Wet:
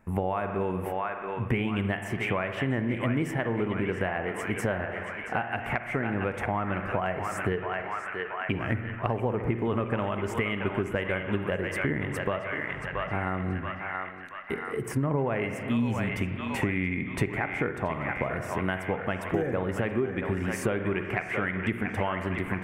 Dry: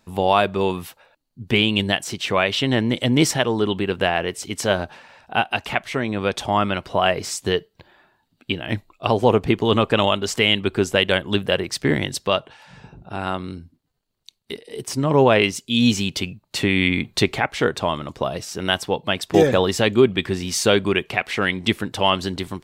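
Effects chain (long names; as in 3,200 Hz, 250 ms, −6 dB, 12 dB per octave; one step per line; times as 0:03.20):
drawn EQ curve 840 Hz 0 dB, 2,100 Hz +3 dB, 4,000 Hz −25 dB, 9,700 Hz −7 dB
feedback echo with a band-pass in the loop 678 ms, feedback 63%, band-pass 1,700 Hz, level −6.5 dB
convolution reverb RT60 1.1 s, pre-delay 42 ms, DRR 8.5 dB
downward compressor 6 to 1, threshold −27 dBFS, peak gain reduction 17.5 dB
low-shelf EQ 170 Hz +6.5 dB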